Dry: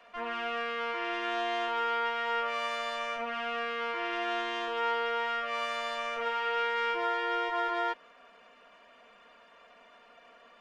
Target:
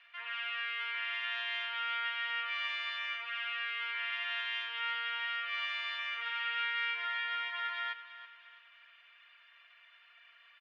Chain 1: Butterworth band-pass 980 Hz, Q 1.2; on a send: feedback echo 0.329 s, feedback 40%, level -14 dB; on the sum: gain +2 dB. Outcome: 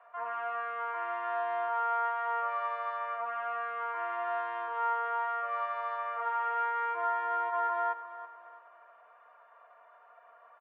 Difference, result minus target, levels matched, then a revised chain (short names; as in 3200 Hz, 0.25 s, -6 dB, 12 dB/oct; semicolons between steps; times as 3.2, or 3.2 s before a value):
1000 Hz band +8.0 dB
Butterworth band-pass 2500 Hz, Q 1.2; on a send: feedback echo 0.329 s, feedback 40%, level -14 dB; on the sum: gain +2 dB